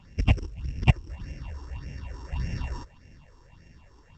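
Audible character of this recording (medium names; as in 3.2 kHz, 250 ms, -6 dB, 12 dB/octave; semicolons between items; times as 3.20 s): a buzz of ramps at a fixed pitch in blocks of 16 samples; phasing stages 6, 1.7 Hz, lowest notch 160–1100 Hz; a quantiser's noise floor 12-bit, dither none; µ-law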